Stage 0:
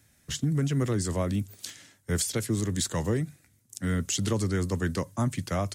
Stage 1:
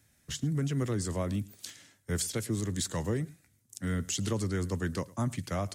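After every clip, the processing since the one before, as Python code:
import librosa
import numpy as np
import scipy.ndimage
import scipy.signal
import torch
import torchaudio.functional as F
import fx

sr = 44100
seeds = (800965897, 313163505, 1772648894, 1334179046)

y = x + 10.0 ** (-22.5 / 20.0) * np.pad(x, (int(108 * sr / 1000.0), 0))[:len(x)]
y = y * 10.0 ** (-4.0 / 20.0)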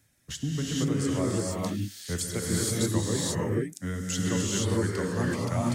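y = fx.dereverb_blind(x, sr, rt60_s=1.1)
y = fx.rev_gated(y, sr, seeds[0], gate_ms=500, shape='rising', drr_db=-5.0)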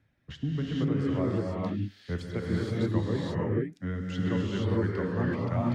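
y = fx.air_absorb(x, sr, metres=350.0)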